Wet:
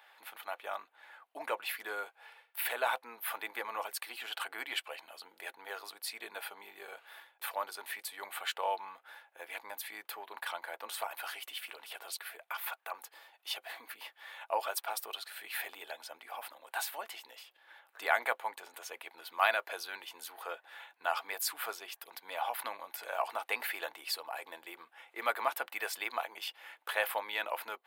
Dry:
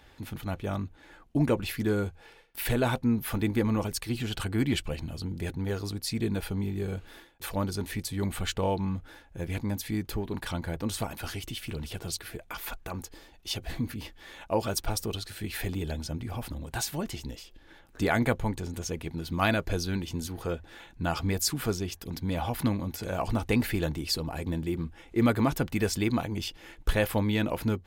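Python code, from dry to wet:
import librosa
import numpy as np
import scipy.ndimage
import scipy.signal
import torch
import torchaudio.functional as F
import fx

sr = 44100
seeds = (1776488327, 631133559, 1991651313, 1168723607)

y = scipy.signal.sosfilt(scipy.signal.butter(4, 700.0, 'highpass', fs=sr, output='sos'), x)
y = fx.peak_eq(y, sr, hz=6200.0, db=-12.5, octaves=1.1)
y = y * 10.0 ** (1.0 / 20.0)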